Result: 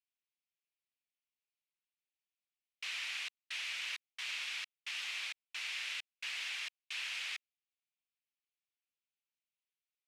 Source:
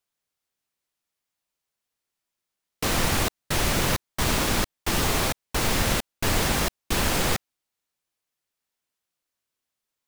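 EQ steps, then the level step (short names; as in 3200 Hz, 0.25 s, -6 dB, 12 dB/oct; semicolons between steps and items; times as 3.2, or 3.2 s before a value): ladder band-pass 2900 Hz, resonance 50%; -1.5 dB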